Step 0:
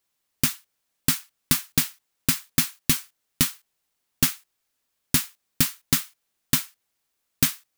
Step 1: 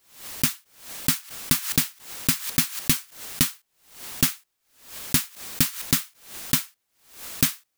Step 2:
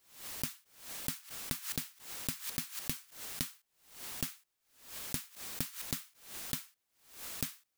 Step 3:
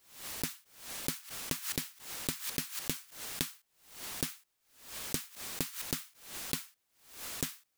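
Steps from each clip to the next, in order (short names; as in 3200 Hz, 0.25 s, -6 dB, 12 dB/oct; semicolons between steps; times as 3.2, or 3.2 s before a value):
backwards sustainer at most 110 dB/s
compressor 8:1, threshold -27 dBFS, peak gain reduction 12.5 dB; gain -6.5 dB
Doppler distortion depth 0.83 ms; gain +3.5 dB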